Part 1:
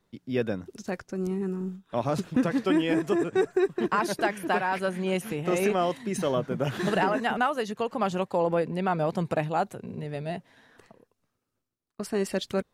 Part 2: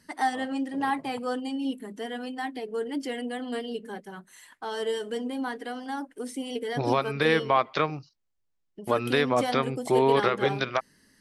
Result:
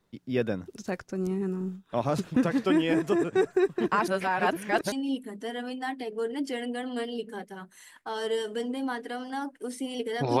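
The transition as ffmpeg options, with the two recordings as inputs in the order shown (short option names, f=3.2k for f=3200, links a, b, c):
-filter_complex "[0:a]apad=whole_dur=10.4,atrim=end=10.4,asplit=2[a][b];[a]atrim=end=4.082[c];[b]atrim=start=4.078:end=4.922,asetpts=PTS-STARTPTS,areverse[d];[1:a]atrim=start=1.478:end=6.96[e];[c][d]acrossfade=d=0.004:c1=hsin:c2=hsin[f];[f][e]acrossfade=d=0.004:c1=hsin:c2=hsin"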